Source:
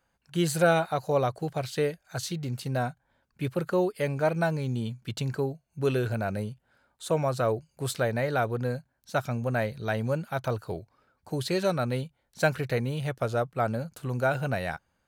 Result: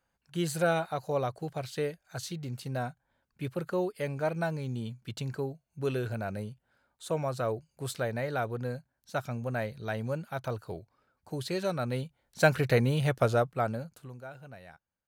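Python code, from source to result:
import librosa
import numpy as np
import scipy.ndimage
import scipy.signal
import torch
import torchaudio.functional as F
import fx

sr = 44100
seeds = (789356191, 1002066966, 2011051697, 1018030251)

y = fx.gain(x, sr, db=fx.line((11.7, -5.0), (12.69, 3.5), (13.25, 3.5), (13.92, -7.0), (14.24, -19.0)))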